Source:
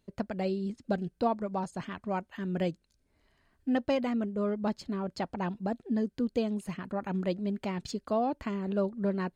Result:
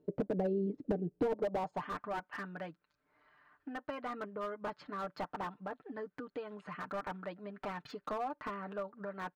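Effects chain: LPF 4600 Hz 12 dB/oct; low shelf 360 Hz +7 dB; comb 6.7 ms, depth 67%; compressor 16:1, threshold -31 dBFS, peak gain reduction 13 dB; band-pass sweep 400 Hz -> 1300 Hz, 1.26–1.96; slew limiter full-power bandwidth 5.6 Hz; gain +10 dB

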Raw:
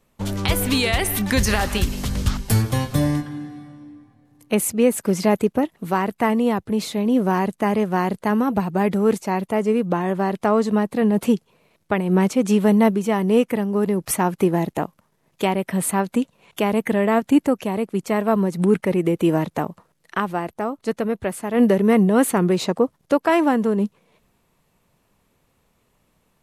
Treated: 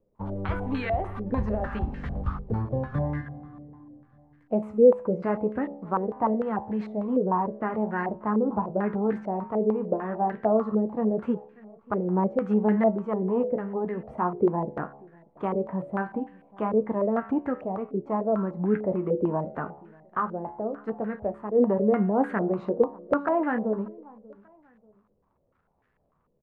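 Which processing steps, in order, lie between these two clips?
low shelf 370 Hz +4.5 dB; resonator 71 Hz, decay 0.73 s, harmonics all, mix 60%; crackle 180/s -52 dBFS; flange 0.16 Hz, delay 9.8 ms, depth 5.8 ms, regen -49%; feedback echo 0.588 s, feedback 38%, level -24 dB; stepped low-pass 6.7 Hz 480–1700 Hz; gain -2 dB

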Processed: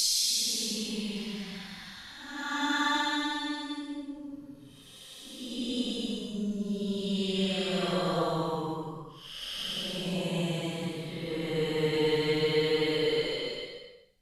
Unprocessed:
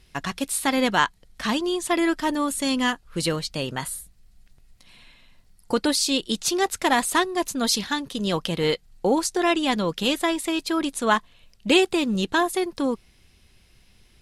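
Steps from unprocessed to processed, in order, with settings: transient shaper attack +4 dB, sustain -2 dB; Paulstretch 13×, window 0.10 s, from 7.71; notches 50/100/150 Hz; gain -7.5 dB

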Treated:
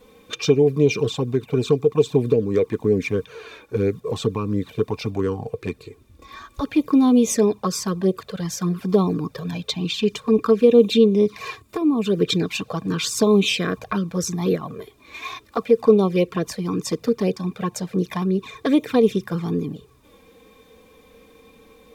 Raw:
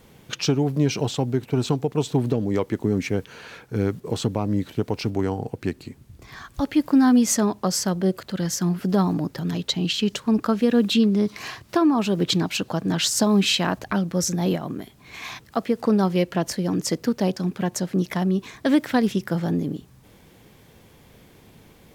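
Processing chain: envelope flanger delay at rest 4.1 ms, full sweep at -15.5 dBFS; small resonant body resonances 450/1100/2400/3600 Hz, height 14 dB, ringing for 45 ms; spectral gain 11.56–12.06, 320–6600 Hz -7 dB

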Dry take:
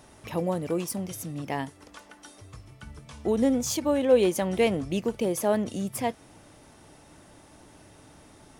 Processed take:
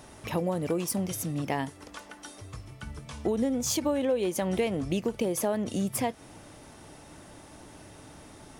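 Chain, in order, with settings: compressor 6:1, threshold -28 dBFS, peak gain reduction 13 dB; gain +3.5 dB

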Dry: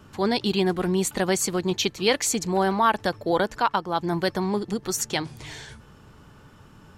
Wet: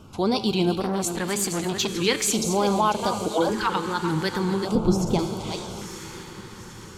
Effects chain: reverse delay 0.297 s, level -9.5 dB; 3.28–3.7 dispersion lows, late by 0.113 s, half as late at 630 Hz; wow and flutter 110 cents; resonator 110 Hz, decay 1.1 s, harmonics all, mix 60%; diffused feedback echo 0.965 s, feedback 53%, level -15.5 dB; in parallel at -1.5 dB: limiter -27.5 dBFS, peak gain reduction 12 dB; 4.75–5.19 on the sum: tilt -4 dB/oct; on a send: split-band echo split 650 Hz, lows 0.355 s, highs 0.247 s, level -16 dB; on the sum: LFO notch square 0.43 Hz 660–1800 Hz; 0.8–1.88 core saturation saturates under 1200 Hz; gain +5 dB

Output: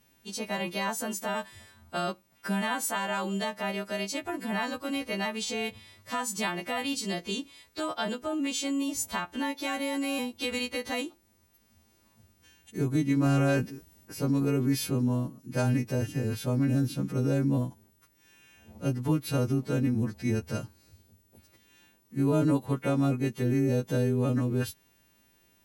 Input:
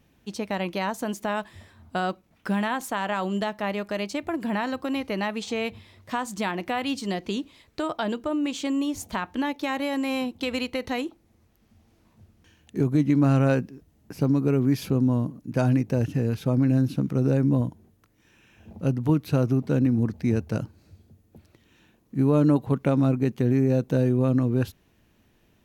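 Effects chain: frequency quantiser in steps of 2 st; 13.26–14.53 transient shaper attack 0 dB, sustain +7 dB; gain -4 dB

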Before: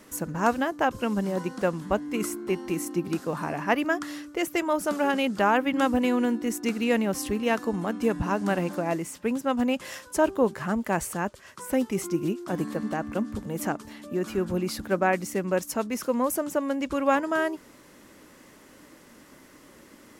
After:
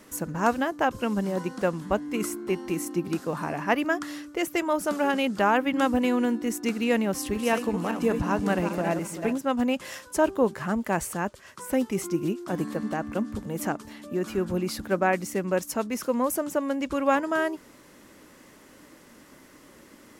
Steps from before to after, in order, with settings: 7.14–9.38 regenerating reverse delay 0.194 s, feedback 45%, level -7 dB

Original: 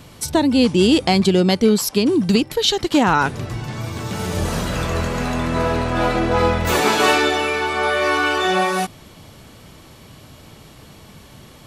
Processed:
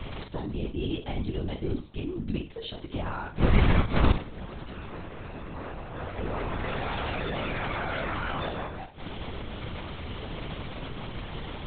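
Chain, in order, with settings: dynamic EQ 180 Hz, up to +5 dB, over -32 dBFS, Q 1.9; flipped gate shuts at -16 dBFS, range -25 dB; flutter echo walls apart 8.8 m, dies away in 0.33 s; LPC vocoder at 8 kHz whisper; 6.18–8.49 fast leveller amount 100%; gain +6.5 dB

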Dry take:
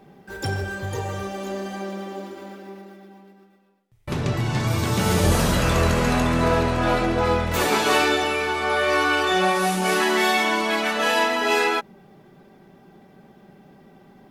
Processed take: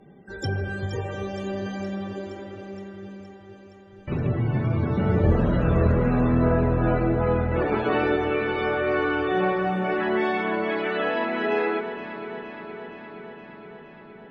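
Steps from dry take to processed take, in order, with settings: loudest bins only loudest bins 64; bell 950 Hz -7.5 dB 1 oct; treble ducked by the level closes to 1500 Hz, closed at -20.5 dBFS; echo with dull and thin repeats by turns 0.234 s, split 890 Hz, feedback 84%, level -10 dB

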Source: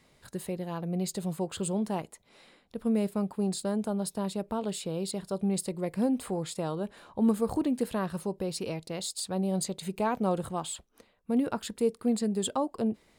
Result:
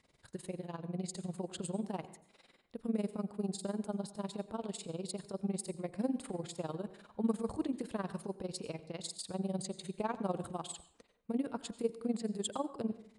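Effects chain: downsampling 22050 Hz; AM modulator 20 Hz, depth 80%; plate-style reverb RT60 0.57 s, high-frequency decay 0.65×, pre-delay 75 ms, DRR 14.5 dB; gain -4 dB

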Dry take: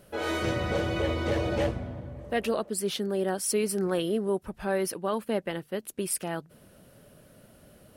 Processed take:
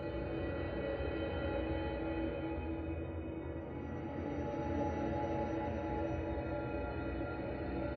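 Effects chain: median filter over 41 samples; high shelf 4500 Hz +9.5 dB; spectral gate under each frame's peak -30 dB strong; resonator 280 Hz, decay 0.24 s, harmonics odd, mix 90%; Paulstretch 14×, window 0.25 s, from 0.95; doubler 14 ms -12.5 dB; flutter echo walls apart 5.3 m, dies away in 0.27 s; gain +7 dB

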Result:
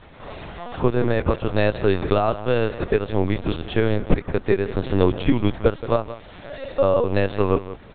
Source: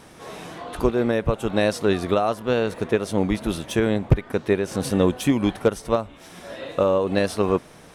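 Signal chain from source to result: on a send: feedback echo 0.172 s, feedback 15%, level -14.5 dB; on the sum: LPC vocoder at 8 kHz pitch kept; gain +1.5 dB

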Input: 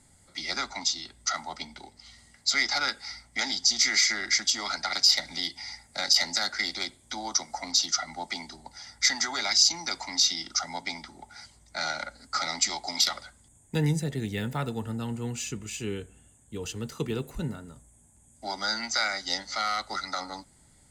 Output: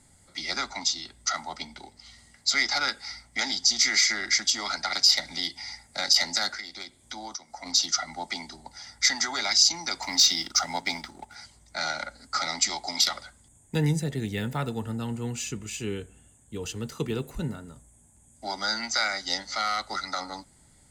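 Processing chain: 6.54–7.66 compressor 10:1, threshold -36 dBFS, peak gain reduction 16.5 dB; 10.02–11.35 sample leveller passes 1; gain +1 dB

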